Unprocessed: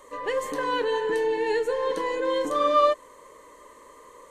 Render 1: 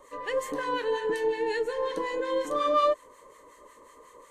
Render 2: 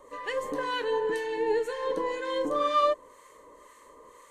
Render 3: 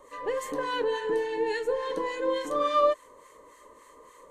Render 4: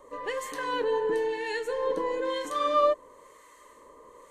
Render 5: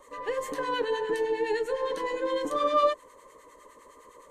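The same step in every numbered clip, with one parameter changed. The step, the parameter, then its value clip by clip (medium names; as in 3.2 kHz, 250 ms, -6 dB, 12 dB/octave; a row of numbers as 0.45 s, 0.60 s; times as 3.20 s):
harmonic tremolo, rate: 5.5 Hz, 2 Hz, 3.5 Hz, 1 Hz, 9.8 Hz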